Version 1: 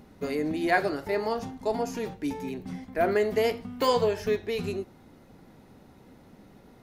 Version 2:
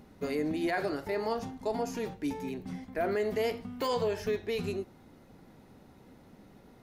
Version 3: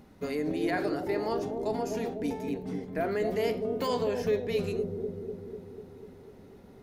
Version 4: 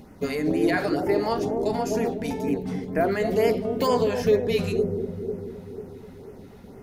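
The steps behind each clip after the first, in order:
brickwall limiter −19.5 dBFS, peak gain reduction 7.5 dB; level −2.5 dB
bucket-brigade delay 247 ms, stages 1,024, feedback 67%, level −3 dB
auto-filter notch sine 2.1 Hz 310–4,000 Hz; level +8 dB

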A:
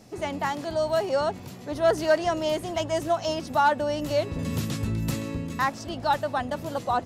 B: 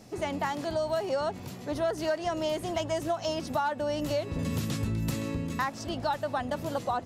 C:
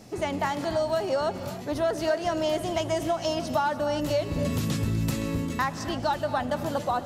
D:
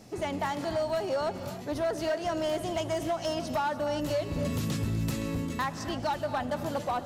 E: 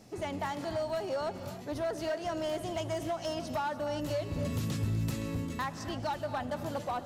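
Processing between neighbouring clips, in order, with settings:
downward compressor 6 to 1, threshold −26 dBFS, peak gain reduction 10 dB
reverb whose tail is shaped and stops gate 320 ms rising, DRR 11 dB; level +3 dB
gain into a clipping stage and back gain 21 dB; level −3 dB
dynamic equaliser 100 Hz, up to +5 dB, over −46 dBFS, Q 2.8; level −4 dB

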